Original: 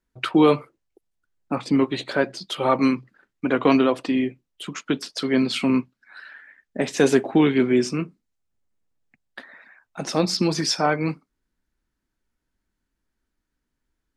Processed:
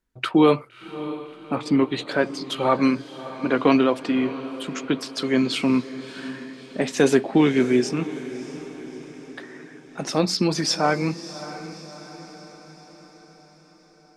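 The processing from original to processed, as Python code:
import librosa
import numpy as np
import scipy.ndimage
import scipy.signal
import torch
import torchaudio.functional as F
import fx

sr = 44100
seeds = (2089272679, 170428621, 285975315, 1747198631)

y = fx.echo_diffused(x, sr, ms=628, feedback_pct=55, wet_db=-14)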